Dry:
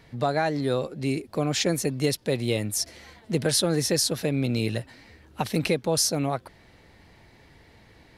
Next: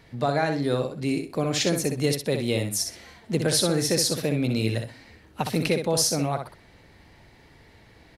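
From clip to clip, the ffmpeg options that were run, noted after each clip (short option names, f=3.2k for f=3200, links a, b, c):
-af "aecho=1:1:63|126|189:0.473|0.0946|0.0189"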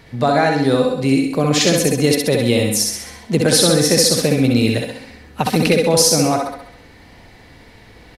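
-af "aecho=1:1:67|134|201|268|335|402:0.596|0.298|0.149|0.0745|0.0372|0.0186,volume=8dB"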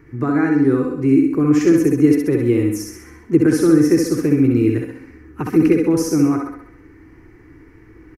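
-af "firequalizer=gain_entry='entry(140,0);entry(210,-9);entry(320,12);entry(580,-18);entry(1200,-1);entry(2300,-8);entry(3700,-29);entry(5800,-12);entry(8400,-17);entry(14000,-8)':delay=0.05:min_phase=1,volume=-1dB"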